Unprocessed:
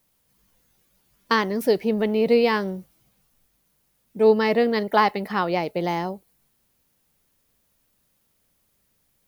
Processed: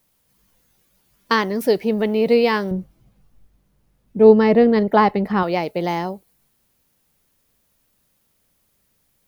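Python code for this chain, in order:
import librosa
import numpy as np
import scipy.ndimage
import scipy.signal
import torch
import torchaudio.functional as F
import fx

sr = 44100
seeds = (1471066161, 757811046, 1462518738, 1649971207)

y = fx.tilt_eq(x, sr, slope=-3.0, at=(2.71, 5.43))
y = y * librosa.db_to_amplitude(2.5)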